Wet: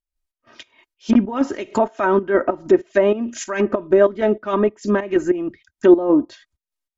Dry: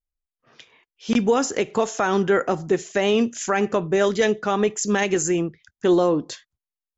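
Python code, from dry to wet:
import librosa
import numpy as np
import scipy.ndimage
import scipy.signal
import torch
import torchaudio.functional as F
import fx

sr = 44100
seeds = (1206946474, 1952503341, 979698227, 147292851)

y = fx.volume_shaper(x, sr, bpm=96, per_beat=2, depth_db=-13, release_ms=155.0, shape='slow start')
y = fx.env_lowpass_down(y, sr, base_hz=1200.0, full_db=-19.0)
y = y + 0.71 * np.pad(y, (int(3.2 * sr / 1000.0), 0))[:len(y)]
y = F.gain(torch.from_numpy(y), 4.5).numpy()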